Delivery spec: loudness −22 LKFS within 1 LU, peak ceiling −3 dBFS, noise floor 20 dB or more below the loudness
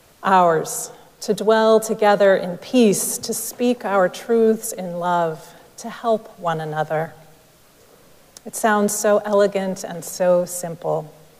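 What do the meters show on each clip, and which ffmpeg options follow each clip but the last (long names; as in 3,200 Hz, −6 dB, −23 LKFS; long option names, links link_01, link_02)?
integrated loudness −19.5 LKFS; sample peak −4.0 dBFS; target loudness −22.0 LKFS
→ -af "volume=-2.5dB"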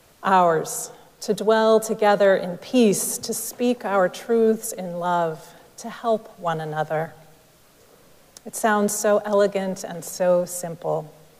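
integrated loudness −22.0 LKFS; sample peak −6.5 dBFS; background noise floor −54 dBFS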